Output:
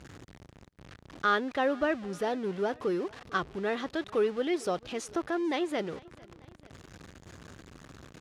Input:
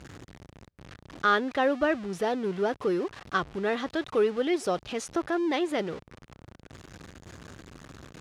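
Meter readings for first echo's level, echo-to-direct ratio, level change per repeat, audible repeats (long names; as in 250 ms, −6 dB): −24.0 dB, −22.5 dB, −4.5 dB, 2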